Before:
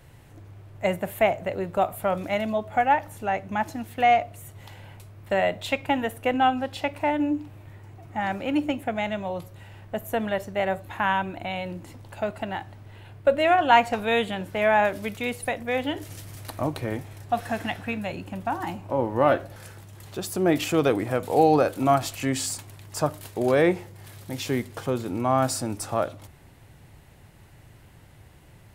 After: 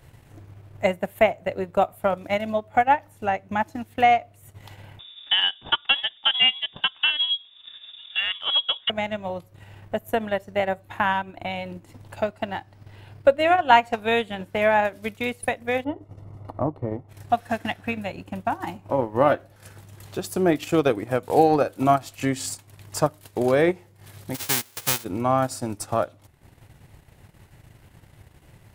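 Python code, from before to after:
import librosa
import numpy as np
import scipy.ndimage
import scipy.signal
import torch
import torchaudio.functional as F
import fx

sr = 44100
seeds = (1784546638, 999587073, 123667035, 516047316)

y = fx.freq_invert(x, sr, carrier_hz=3600, at=(4.99, 8.9))
y = fx.peak_eq(y, sr, hz=5000.0, db=6.5, octaves=0.36, at=(12.16, 13.37))
y = fx.savgol(y, sr, points=65, at=(15.83, 17.08), fade=0.02)
y = fx.envelope_flatten(y, sr, power=0.1, at=(24.34, 25.03), fade=0.02)
y = fx.transient(y, sr, attack_db=4, sustain_db=-10)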